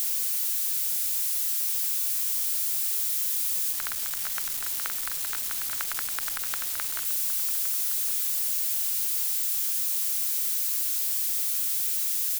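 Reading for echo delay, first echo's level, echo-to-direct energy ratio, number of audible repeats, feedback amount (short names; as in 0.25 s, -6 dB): 1.115 s, -14.0 dB, -14.0 dB, 2, 20%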